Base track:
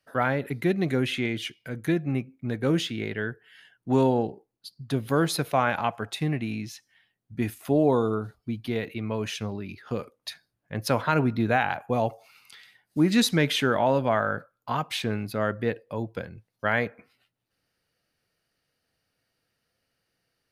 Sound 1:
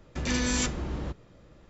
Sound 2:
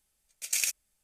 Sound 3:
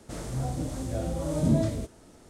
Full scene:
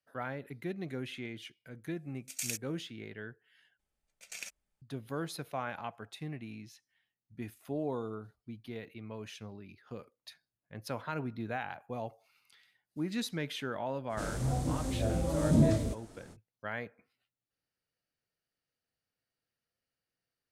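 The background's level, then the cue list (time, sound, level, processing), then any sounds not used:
base track −14 dB
0:01.86: mix in 2 −8.5 dB
0:03.79: overwrite with 2 −3.5 dB + low-pass filter 1,300 Hz 6 dB per octave
0:14.08: mix in 3 −1 dB, fades 0.05 s
not used: 1

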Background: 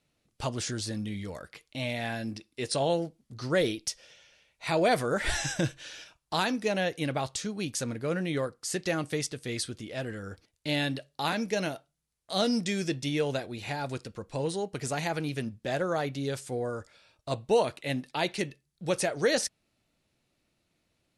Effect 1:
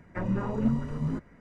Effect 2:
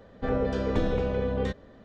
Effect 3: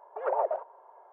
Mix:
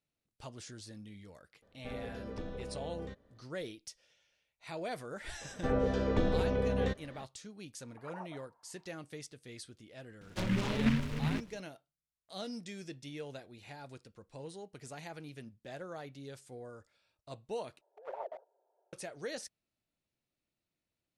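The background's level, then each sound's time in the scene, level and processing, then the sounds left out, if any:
background −15 dB
0:01.62: mix in 2 −16 dB
0:05.41: mix in 2 −3.5 dB + one half of a high-frequency compander encoder only
0:07.81: mix in 3 −8.5 dB + high-pass filter 1,400 Hz
0:10.21: mix in 1 −3 dB + short delay modulated by noise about 1,900 Hz, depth 0.15 ms
0:17.81: overwrite with 3 −13 dB + adaptive Wiener filter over 41 samples

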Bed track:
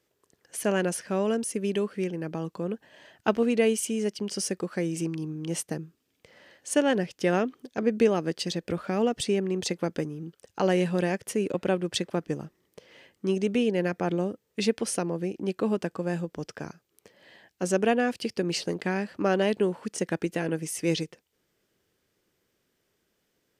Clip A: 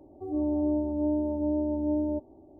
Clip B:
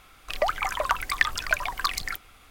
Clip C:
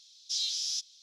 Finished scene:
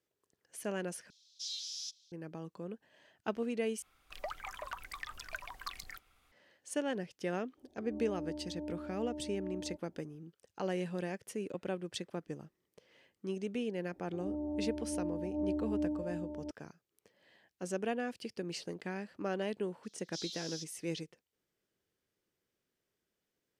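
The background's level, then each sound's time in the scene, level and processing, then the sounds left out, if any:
bed track −12 dB
0:01.10: overwrite with C −9.5 dB
0:03.82: overwrite with B −16.5 dB + brickwall limiter −8.5 dBFS
0:07.57: mix in A −15.5 dB
0:13.92: mix in A −10.5 dB + single-tap delay 1,123 ms −3.5 dB
0:19.83: mix in C −12 dB

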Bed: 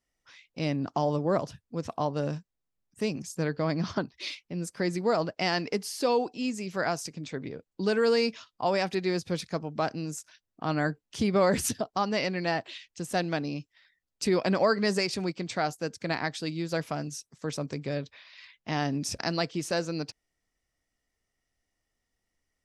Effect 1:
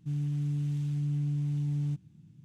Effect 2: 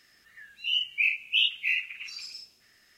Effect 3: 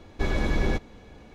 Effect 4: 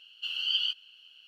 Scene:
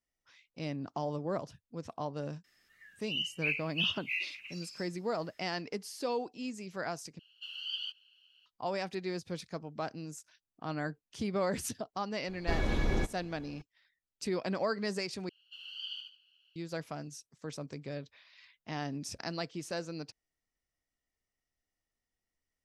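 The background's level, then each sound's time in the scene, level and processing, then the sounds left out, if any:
bed −8.5 dB
0:02.44: mix in 2 −8 dB
0:07.19: overwrite with 4 −10 dB + low-shelf EQ 100 Hz −9 dB
0:12.28: mix in 3 −5.5 dB
0:15.29: overwrite with 4 −15 dB + repeating echo 75 ms, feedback 27%, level −4.5 dB
not used: 1

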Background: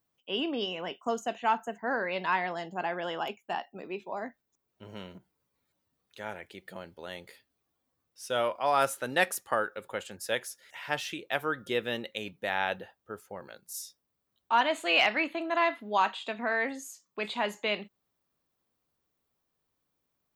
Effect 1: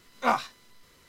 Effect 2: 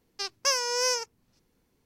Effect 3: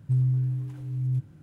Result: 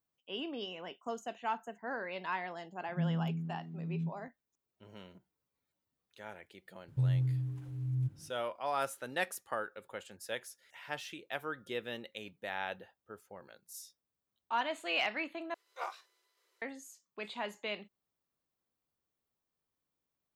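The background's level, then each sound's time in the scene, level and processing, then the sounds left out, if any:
background −8.5 dB
0:02.86: mix in 3 −10 dB + channel vocoder with a chord as carrier major triad, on E3
0:06.88: mix in 3 −6.5 dB
0:15.54: overwrite with 1 −16 dB + linear-phase brick-wall high-pass 320 Hz
not used: 2

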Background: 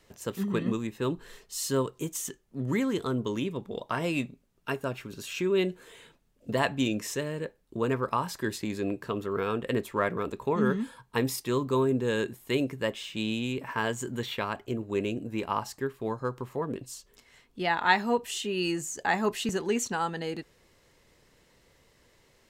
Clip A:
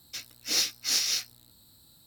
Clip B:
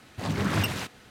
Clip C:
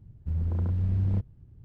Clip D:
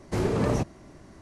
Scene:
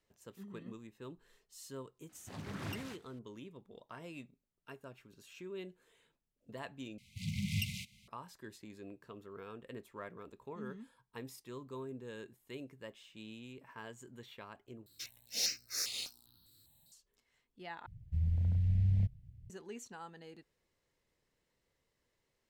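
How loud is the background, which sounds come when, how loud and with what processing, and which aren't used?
background −19 dB
0:02.09: mix in B −16.5 dB
0:06.98: overwrite with B −8 dB + linear-phase brick-wall band-stop 230–2,000 Hz
0:14.86: overwrite with A −7 dB + step-sequenced phaser 5 Hz 200–5,600 Hz
0:17.86: overwrite with C −3.5 dB + drawn EQ curve 150 Hz 0 dB, 360 Hz −17 dB, 660 Hz −7 dB, 1,200 Hz −20 dB, 2,000 Hz +2 dB
not used: D

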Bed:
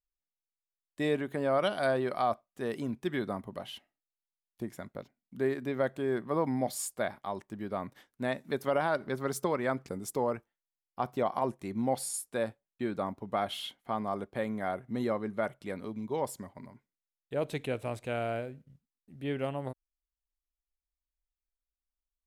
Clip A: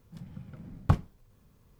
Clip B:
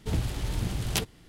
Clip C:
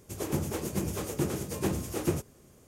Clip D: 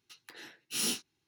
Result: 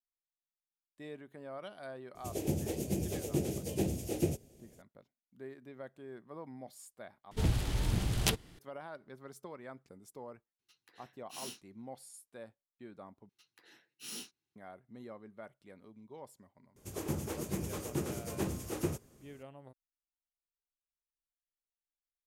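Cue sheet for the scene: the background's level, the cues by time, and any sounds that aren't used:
bed −17 dB
0:02.15: mix in C −2.5 dB + drawn EQ curve 720 Hz 0 dB, 1,100 Hz −19 dB, 2,500 Hz −2 dB
0:07.31: overwrite with B −1.5 dB
0:10.59: mix in D −13.5 dB
0:13.29: overwrite with D −12.5 dB
0:16.76: mix in C −5.5 dB
not used: A

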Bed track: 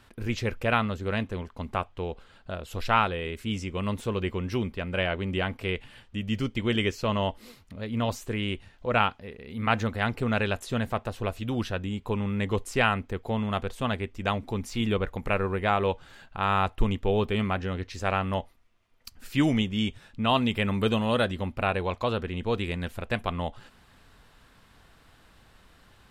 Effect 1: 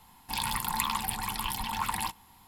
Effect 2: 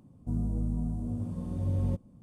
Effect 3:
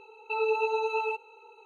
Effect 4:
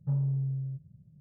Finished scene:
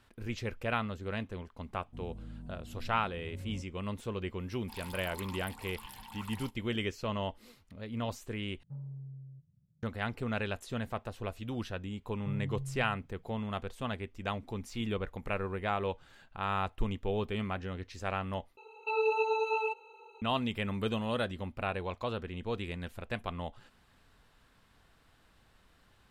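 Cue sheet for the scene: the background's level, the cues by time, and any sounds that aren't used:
bed track −8 dB
0:01.66: mix in 2 −15 dB
0:04.39: mix in 1 −16 dB
0:08.63: overwrite with 4 −14.5 dB
0:12.19: mix in 4 −5 dB + low-shelf EQ 92 Hz −12 dB
0:18.57: overwrite with 3 −2 dB

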